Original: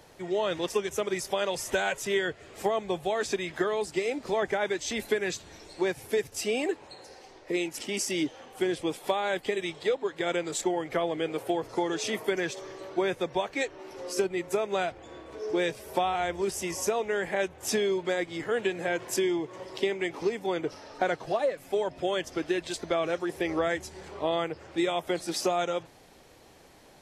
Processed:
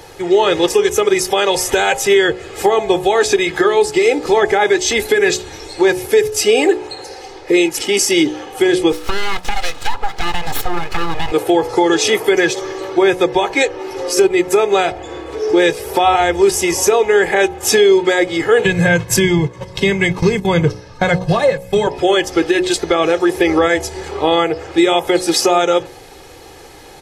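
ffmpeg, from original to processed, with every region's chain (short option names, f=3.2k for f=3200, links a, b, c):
-filter_complex "[0:a]asettb=1/sr,asplit=3[a][b][c];[a]atrim=end=8.924[d];[b]atrim=start=8.92:end=11.32,asetpts=PTS-STARTPTS,afade=t=in:d=0.004:c=qsin,afade=t=out:st=2.396:d=0.004:c=qsin,lowpass=7.2k,acompressor=threshold=-28dB:ratio=6:attack=3.2:release=140:knee=1:detection=peak,aeval=exprs='abs(val(0))':c=same[e];[c]atrim=start=11.316[f];[d][e]acrossfade=d=0.004:c1=hsin:c2=qsin[g];[g][f]acrossfade=d=0.004:c1=qsin:c2=hsin,asettb=1/sr,asplit=3[h][i][j];[h]atrim=end=18.654[k];[i]atrim=start=18.65:end=21.87,asetpts=PTS-STARTPTS,afade=t=in:d=0.004:c=qsin,afade=t=out:st=3.216:d=0.004:c=qsin,agate=range=-11dB:threshold=-41dB:ratio=16:release=100:detection=peak,lowshelf=f=270:t=q:w=3:g=12,aecho=1:1:1.9:0.53,atrim=end_sample=142002[l];[j]atrim=start=21.866[m];[k][l]acrossfade=d=0.004:c1=hsin:c2=qsin[n];[n][m]acrossfade=d=0.004:c1=qsin:c2=hsin,aecho=1:1:2.4:0.56,bandreject=f=60.97:t=h:w=4,bandreject=f=121.94:t=h:w=4,bandreject=f=182.91:t=h:w=4,bandreject=f=243.88:t=h:w=4,bandreject=f=304.85:t=h:w=4,bandreject=f=365.82:t=h:w=4,bandreject=f=426.79:t=h:w=4,bandreject=f=487.76:t=h:w=4,bandreject=f=548.73:t=h:w=4,bandreject=f=609.7:t=h:w=4,bandreject=f=670.67:t=h:w=4,bandreject=f=731.64:t=h:w=4,bandreject=f=792.61:t=h:w=4,bandreject=f=853.58:t=h:w=4,bandreject=f=914.55:t=h:w=4,bandreject=f=975.52:t=h:w=4,bandreject=f=1.03649k:t=h:w=4,bandreject=f=1.09746k:t=h:w=4,alimiter=level_in=17.5dB:limit=-1dB:release=50:level=0:latency=1,volume=-2dB"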